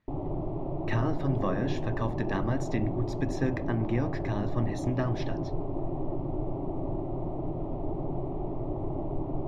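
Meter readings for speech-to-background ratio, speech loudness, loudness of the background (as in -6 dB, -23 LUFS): 2.0 dB, -32.5 LUFS, -34.5 LUFS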